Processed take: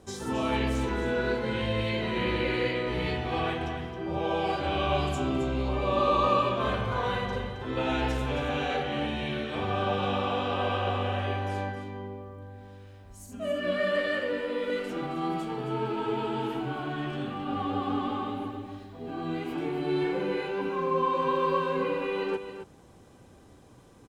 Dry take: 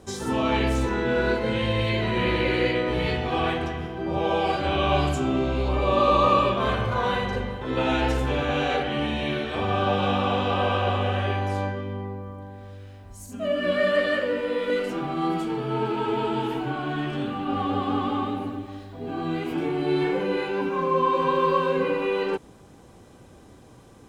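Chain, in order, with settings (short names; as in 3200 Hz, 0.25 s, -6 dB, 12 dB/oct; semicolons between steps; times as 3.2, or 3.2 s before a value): echo 0.268 s -10 dB; gain -5 dB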